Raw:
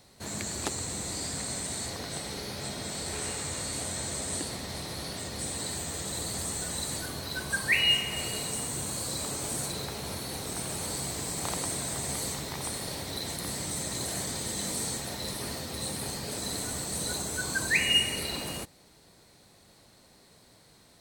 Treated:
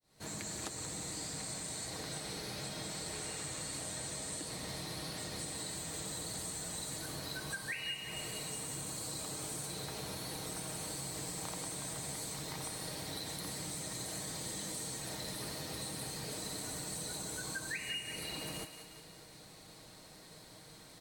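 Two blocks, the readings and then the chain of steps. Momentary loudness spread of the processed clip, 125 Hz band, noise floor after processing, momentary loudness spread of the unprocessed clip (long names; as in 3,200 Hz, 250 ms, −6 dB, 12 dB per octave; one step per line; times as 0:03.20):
7 LU, −7.5 dB, −55 dBFS, 9 LU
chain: fade in at the beginning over 0.57 s
comb filter 6.4 ms, depth 43%
downward compressor 6 to 1, threshold −42 dBFS, peak gain reduction 21 dB
on a send: feedback echo with a high-pass in the loop 182 ms, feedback 54%, level −9 dB
on the sum: level +2 dB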